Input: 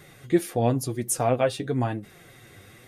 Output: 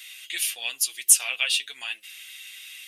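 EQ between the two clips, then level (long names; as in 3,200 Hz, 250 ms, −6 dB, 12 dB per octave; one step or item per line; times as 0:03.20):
high-pass with resonance 2,800 Hz, resonance Q 4.8
high-shelf EQ 3,700 Hz +9.5 dB
+2.5 dB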